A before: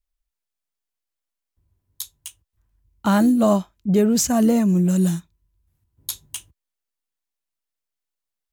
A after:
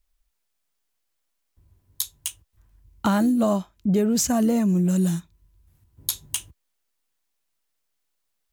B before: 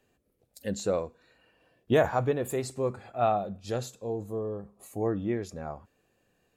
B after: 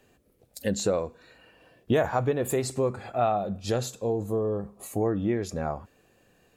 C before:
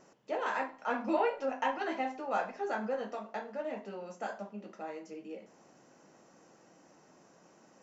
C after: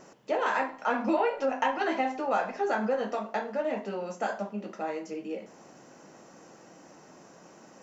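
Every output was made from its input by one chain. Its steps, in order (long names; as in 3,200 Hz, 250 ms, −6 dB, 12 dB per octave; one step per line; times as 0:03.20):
downward compressor 2.5 to 1, threshold −33 dBFS
level +8.5 dB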